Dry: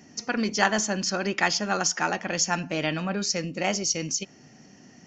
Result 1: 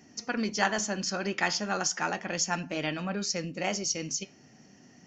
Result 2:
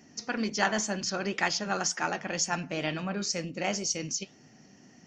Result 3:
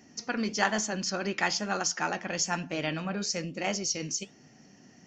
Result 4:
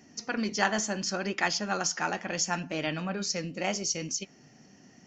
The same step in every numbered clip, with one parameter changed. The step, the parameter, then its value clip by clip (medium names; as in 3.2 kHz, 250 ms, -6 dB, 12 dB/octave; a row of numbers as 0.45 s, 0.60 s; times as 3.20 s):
flange, rate: 0.35 Hz, 2 Hz, 1.1 Hz, 0.72 Hz